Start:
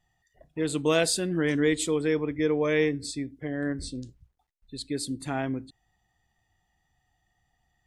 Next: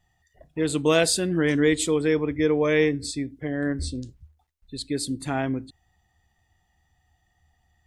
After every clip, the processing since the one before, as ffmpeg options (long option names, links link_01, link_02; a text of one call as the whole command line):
ffmpeg -i in.wav -af "equalizer=frequency=77:width=5.9:gain=13.5,volume=3.5dB" out.wav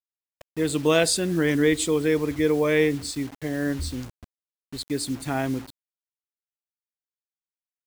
ffmpeg -i in.wav -af "acrusher=bits=6:mix=0:aa=0.000001" out.wav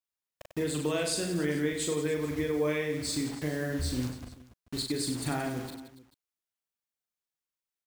ffmpeg -i in.wav -filter_complex "[0:a]acompressor=threshold=-29dB:ratio=6,asplit=2[link_01][link_02];[link_02]aecho=0:1:40|96|174.4|284.2|437.8:0.631|0.398|0.251|0.158|0.1[link_03];[link_01][link_03]amix=inputs=2:normalize=0" out.wav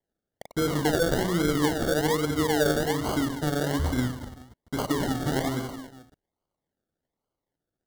ffmpeg -i in.wav -af "acrusher=samples=34:mix=1:aa=0.000001:lfo=1:lforange=20.4:lforate=1.2,asuperstop=centerf=2500:order=12:qfactor=4.5,volume=5.5dB" out.wav